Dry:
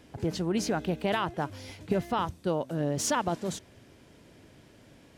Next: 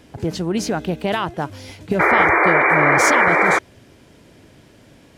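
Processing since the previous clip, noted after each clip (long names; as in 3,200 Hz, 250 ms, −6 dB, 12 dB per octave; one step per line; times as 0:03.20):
sound drawn into the spectrogram noise, 0:01.99–0:03.59, 300–2,400 Hz −22 dBFS
level +7 dB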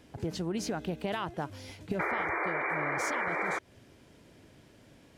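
downward compressor 6 to 1, threshold −20 dBFS, peak gain reduction 10 dB
level −9 dB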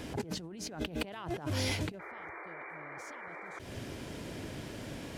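compressor whose output falls as the input rises −46 dBFS, ratio −1
level +5 dB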